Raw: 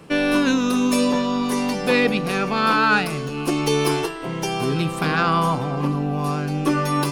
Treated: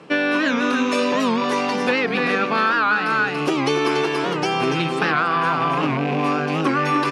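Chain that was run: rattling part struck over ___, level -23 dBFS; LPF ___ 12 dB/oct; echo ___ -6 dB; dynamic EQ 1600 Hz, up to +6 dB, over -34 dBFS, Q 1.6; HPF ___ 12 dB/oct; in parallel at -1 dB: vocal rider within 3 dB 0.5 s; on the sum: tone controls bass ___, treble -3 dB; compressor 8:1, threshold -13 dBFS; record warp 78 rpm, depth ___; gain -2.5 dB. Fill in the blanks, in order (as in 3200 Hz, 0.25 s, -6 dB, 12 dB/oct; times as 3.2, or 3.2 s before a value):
-24 dBFS, 6000 Hz, 0.284 s, 160 Hz, -4 dB, 160 cents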